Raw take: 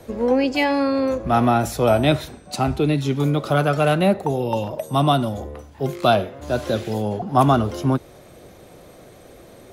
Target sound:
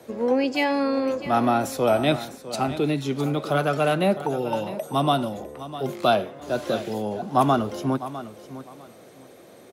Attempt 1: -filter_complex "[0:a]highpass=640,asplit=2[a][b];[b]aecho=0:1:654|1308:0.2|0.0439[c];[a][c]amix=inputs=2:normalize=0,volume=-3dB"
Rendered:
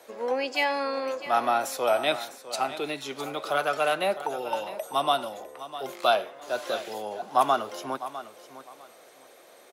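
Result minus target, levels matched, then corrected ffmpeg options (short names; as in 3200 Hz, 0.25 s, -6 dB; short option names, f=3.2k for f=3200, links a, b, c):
125 Hz band -17.5 dB
-filter_complex "[0:a]highpass=170,asplit=2[a][b];[b]aecho=0:1:654|1308:0.2|0.0439[c];[a][c]amix=inputs=2:normalize=0,volume=-3dB"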